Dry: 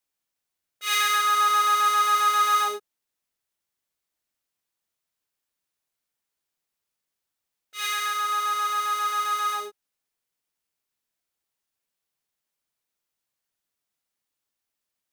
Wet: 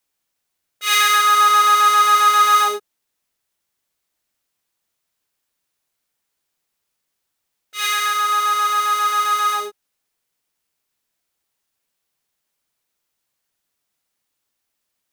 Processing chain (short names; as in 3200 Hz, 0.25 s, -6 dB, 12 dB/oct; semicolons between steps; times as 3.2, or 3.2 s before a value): 1.49–2.54 backlash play -41.5 dBFS; gain +7.5 dB